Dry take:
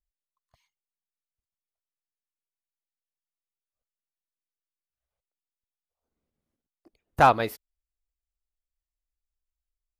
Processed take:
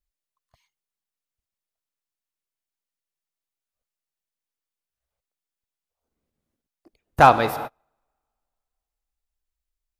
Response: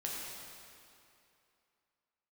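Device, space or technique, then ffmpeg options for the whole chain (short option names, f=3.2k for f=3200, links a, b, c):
keyed gated reverb: -filter_complex "[0:a]asplit=3[a][b][c];[1:a]atrim=start_sample=2205[d];[b][d]afir=irnorm=-1:irlink=0[e];[c]apad=whole_len=440832[f];[e][f]sidechaingate=range=-38dB:threshold=-51dB:ratio=16:detection=peak,volume=-10dB[g];[a][g]amix=inputs=2:normalize=0,volume=3dB"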